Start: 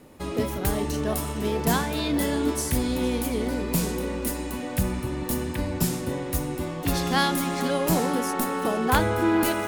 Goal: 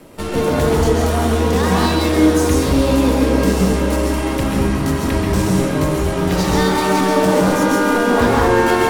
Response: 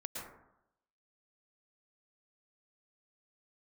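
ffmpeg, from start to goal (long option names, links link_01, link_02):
-filter_complex "[0:a]acrossover=split=6800[link_01][link_02];[link_02]acompressor=threshold=-44dB:ratio=4:attack=1:release=60[link_03];[link_01][link_03]amix=inputs=2:normalize=0,lowpass=11000,highshelf=frequency=8500:gain=4.5,acrossover=split=110[link_04][link_05];[link_05]alimiter=limit=-17dB:level=0:latency=1:release=38[link_06];[link_04][link_06]amix=inputs=2:normalize=0,aeval=exprs='0.266*sin(PI/2*2.24*val(0)/0.266)':channel_layout=same,aeval=exprs='0.266*(cos(1*acos(clip(val(0)/0.266,-1,1)))-cos(1*PI/2))+0.0299*(cos(8*acos(clip(val(0)/0.266,-1,1)))-cos(8*PI/2))':channel_layout=same[link_07];[1:a]atrim=start_sample=2205,asetrate=33516,aresample=44100[link_08];[link_07][link_08]afir=irnorm=-1:irlink=0,asetrate=48000,aresample=44100"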